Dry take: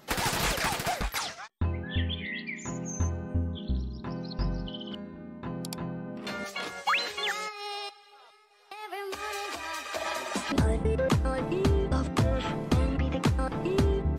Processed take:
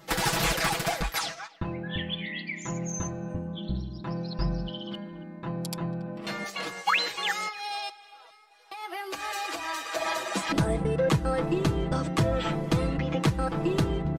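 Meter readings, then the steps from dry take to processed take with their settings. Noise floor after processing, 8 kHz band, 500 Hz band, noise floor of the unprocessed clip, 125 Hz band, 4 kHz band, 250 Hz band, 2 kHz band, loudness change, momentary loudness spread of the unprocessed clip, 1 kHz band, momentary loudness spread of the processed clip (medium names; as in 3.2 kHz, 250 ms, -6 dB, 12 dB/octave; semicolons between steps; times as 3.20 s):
-52 dBFS, +2.0 dB, +1.5 dB, -55 dBFS, 0.0 dB, +2.0 dB, +1.5 dB, +2.0 dB, +1.0 dB, 11 LU, +2.0 dB, 10 LU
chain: comb 6.1 ms, depth 80%; overload inside the chain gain 15.5 dB; speakerphone echo 280 ms, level -20 dB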